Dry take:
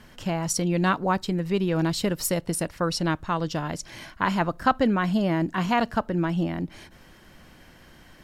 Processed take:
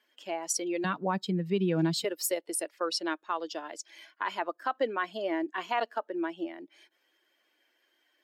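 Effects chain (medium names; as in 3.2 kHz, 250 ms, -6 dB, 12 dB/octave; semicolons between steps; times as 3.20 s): expander on every frequency bin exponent 1.5; steep high-pass 310 Hz 36 dB/octave, from 0.84 s 160 Hz, from 2.03 s 330 Hz; peak limiter -18.5 dBFS, peak gain reduction 9.5 dB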